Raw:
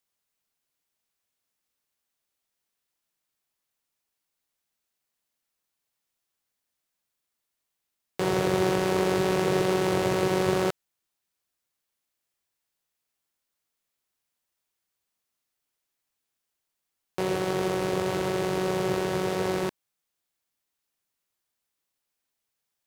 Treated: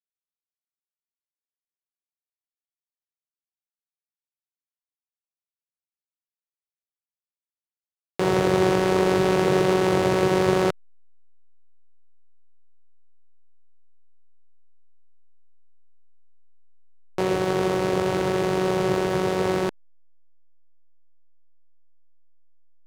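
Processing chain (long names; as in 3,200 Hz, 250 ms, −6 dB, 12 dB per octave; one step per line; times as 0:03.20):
high-shelf EQ 9,800 Hz −8.5 dB
hum removal 50.81 Hz, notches 5
slack as between gear wheels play −32.5 dBFS
level +4.5 dB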